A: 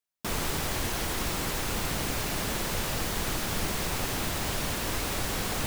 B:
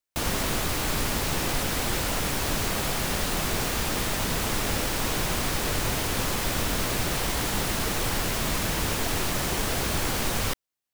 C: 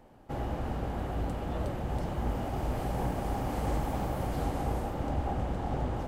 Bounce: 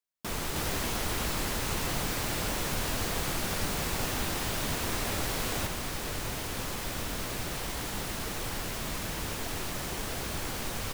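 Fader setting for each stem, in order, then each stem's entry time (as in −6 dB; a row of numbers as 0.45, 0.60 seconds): −3.5 dB, −8.0 dB, muted; 0.00 s, 0.40 s, muted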